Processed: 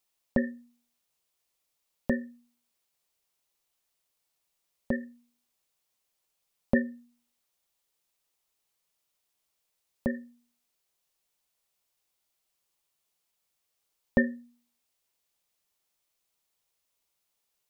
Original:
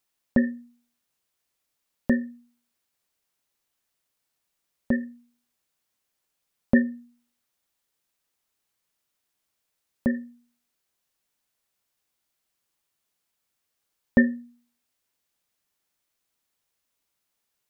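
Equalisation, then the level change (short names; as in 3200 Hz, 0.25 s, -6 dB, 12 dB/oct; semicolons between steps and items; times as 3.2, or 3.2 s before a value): fifteen-band EQ 100 Hz -6 dB, 250 Hz -7 dB, 1600 Hz -5 dB; 0.0 dB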